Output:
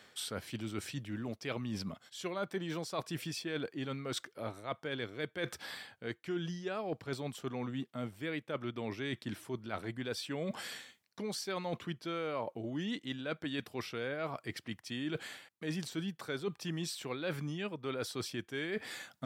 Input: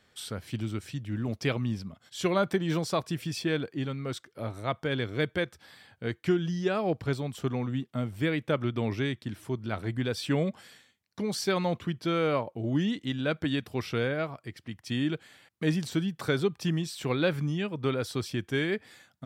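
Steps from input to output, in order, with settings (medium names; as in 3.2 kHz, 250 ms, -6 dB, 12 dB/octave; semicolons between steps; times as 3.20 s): high-pass 290 Hz 6 dB/octave; reverse; compression 5:1, threshold -46 dBFS, peak gain reduction 21 dB; reverse; trim +9 dB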